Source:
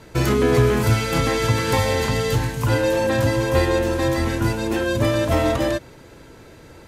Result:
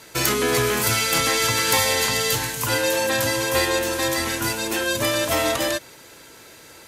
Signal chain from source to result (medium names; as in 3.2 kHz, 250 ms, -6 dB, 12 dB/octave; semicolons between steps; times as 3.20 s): tilt EQ +3.5 dB/octave